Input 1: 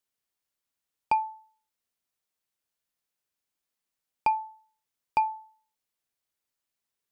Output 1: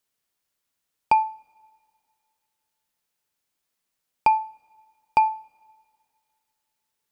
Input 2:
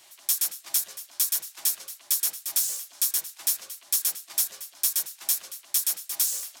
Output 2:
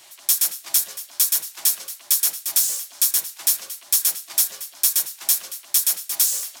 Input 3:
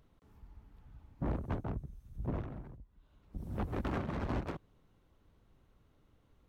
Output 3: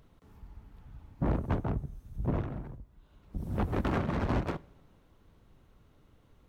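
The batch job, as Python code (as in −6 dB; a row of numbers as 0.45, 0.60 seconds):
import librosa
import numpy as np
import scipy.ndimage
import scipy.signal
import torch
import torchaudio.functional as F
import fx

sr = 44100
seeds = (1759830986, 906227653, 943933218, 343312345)

y = fx.rev_double_slope(x, sr, seeds[0], early_s=0.43, late_s=2.3, knee_db=-18, drr_db=17.0)
y = y * 10.0 ** (6.0 / 20.0)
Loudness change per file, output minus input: +6.5, +6.0, +6.0 LU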